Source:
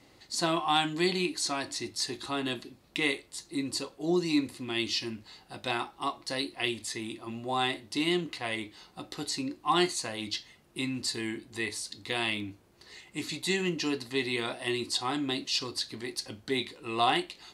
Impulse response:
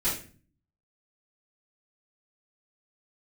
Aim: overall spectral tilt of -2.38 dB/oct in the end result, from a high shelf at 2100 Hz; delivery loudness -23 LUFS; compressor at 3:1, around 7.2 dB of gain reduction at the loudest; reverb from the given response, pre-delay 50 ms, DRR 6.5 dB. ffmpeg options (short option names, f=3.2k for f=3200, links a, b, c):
-filter_complex "[0:a]highshelf=f=2.1k:g=6,acompressor=threshold=-29dB:ratio=3,asplit=2[a][b];[1:a]atrim=start_sample=2205,adelay=50[c];[b][c]afir=irnorm=-1:irlink=0,volume=-15.5dB[d];[a][d]amix=inputs=2:normalize=0,volume=8.5dB"